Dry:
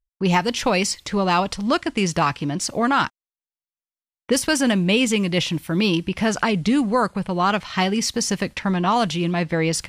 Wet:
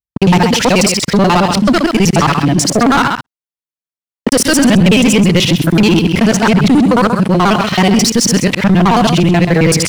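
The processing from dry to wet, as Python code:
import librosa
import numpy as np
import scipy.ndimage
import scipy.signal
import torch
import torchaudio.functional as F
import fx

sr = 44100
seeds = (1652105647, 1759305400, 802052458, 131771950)

p1 = fx.local_reverse(x, sr, ms=54.0)
p2 = scipy.signal.sosfilt(scipy.signal.butter(2, 110.0, 'highpass', fs=sr, output='sos'), p1)
p3 = p2 + fx.echo_single(p2, sr, ms=131, db=-11.0, dry=0)
p4 = fx.leveller(p3, sr, passes=3)
p5 = fx.low_shelf(p4, sr, hz=190.0, db=7.5)
p6 = fx.level_steps(p5, sr, step_db=22)
p7 = p5 + (p6 * librosa.db_to_amplitude(-1.0))
y = p7 * librosa.db_to_amplitude(-1.0)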